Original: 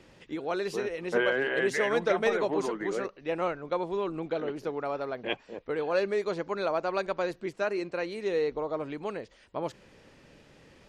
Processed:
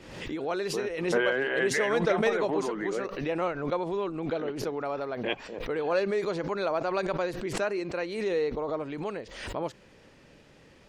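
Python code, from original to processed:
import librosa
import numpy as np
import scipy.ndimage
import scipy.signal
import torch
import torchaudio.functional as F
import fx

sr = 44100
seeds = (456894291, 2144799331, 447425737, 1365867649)

y = fx.pre_swell(x, sr, db_per_s=57.0)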